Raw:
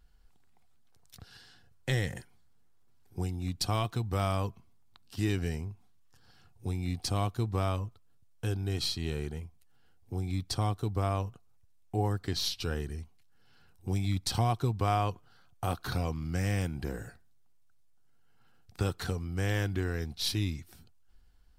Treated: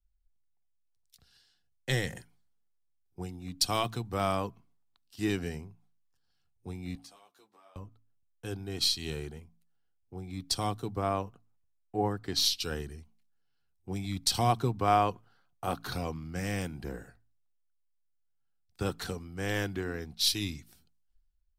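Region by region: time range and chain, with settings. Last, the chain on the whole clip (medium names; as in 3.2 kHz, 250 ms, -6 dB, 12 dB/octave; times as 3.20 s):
6.95–7.76 s: high-pass 490 Hz + compression 8:1, threshold -41 dBFS + three-phase chorus
whole clip: peaking EQ 93 Hz -8.5 dB 0.77 oct; de-hum 55.28 Hz, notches 5; three bands expanded up and down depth 70%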